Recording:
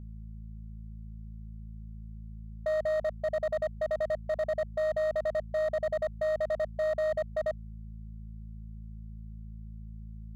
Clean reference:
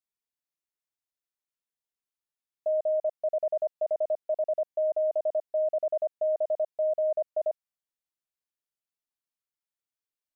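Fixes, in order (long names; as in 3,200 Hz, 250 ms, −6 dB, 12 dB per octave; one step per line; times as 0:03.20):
clipped peaks rebuilt −26 dBFS
hum removal 54.4 Hz, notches 4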